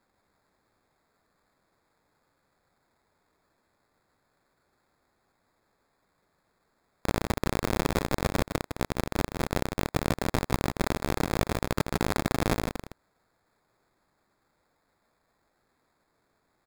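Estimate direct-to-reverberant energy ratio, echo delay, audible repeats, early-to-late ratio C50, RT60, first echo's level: no reverb audible, 157 ms, 1, no reverb audible, no reverb audible, −6.5 dB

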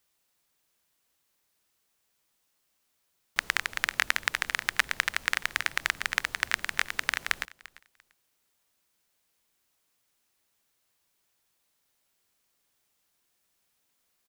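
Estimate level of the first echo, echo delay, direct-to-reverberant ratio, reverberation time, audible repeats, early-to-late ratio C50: −20.0 dB, 344 ms, no reverb audible, no reverb audible, 2, no reverb audible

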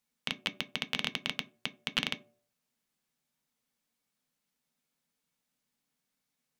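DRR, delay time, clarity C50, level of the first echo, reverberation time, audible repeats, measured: 7.0 dB, no echo audible, 19.0 dB, no echo audible, 0.55 s, no echo audible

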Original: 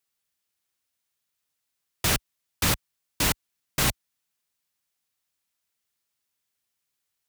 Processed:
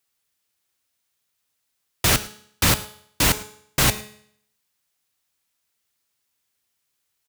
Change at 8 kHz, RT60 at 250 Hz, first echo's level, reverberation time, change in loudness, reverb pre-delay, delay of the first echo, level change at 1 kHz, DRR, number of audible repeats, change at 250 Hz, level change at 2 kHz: +5.5 dB, 0.65 s, −21.0 dB, 0.65 s, +5.5 dB, 5 ms, 108 ms, +5.5 dB, 10.5 dB, 1, +5.0 dB, +5.5 dB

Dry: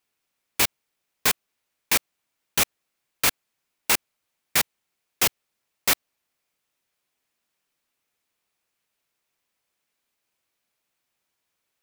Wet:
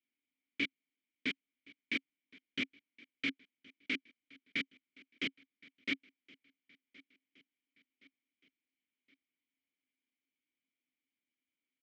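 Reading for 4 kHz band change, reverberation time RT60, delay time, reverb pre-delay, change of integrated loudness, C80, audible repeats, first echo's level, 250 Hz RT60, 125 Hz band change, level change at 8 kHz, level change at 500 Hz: −14.5 dB, no reverb audible, 1,069 ms, no reverb audible, −16.0 dB, no reverb audible, 2, −23.5 dB, no reverb audible, −17.0 dB, −38.0 dB, −17.5 dB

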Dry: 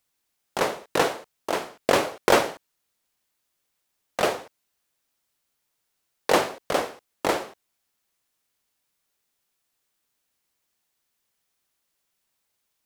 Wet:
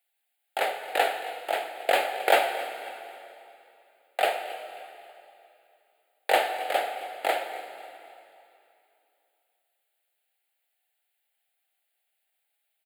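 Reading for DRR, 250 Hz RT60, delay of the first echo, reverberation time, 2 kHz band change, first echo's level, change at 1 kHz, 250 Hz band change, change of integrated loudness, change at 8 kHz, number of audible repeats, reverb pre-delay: 7.0 dB, 2.7 s, 269 ms, 2.8 s, +0.5 dB, −17.5 dB, +0.5 dB, −14.5 dB, −2.5 dB, −7.5 dB, 3, 6 ms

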